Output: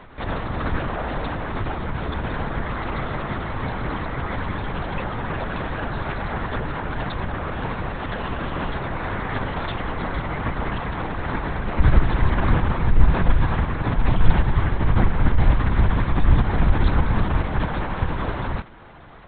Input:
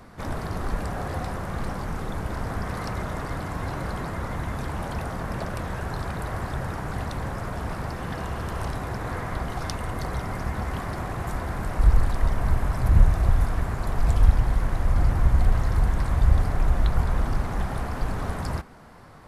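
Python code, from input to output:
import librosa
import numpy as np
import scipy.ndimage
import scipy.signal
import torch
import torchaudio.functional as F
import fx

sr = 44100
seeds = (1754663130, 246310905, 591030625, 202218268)

y = fx.high_shelf(x, sr, hz=2300.0, db=7.5)
y = fx.lpc_vocoder(y, sr, seeds[0], excitation='whisper', order=10)
y = y * librosa.db_to_amplitude(3.0)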